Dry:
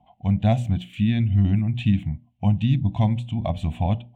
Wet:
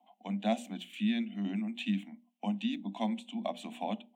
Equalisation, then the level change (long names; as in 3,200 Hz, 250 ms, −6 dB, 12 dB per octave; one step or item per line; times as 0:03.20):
Butterworth high-pass 200 Hz 96 dB per octave
high-shelf EQ 3,600 Hz +7.5 dB
−7.0 dB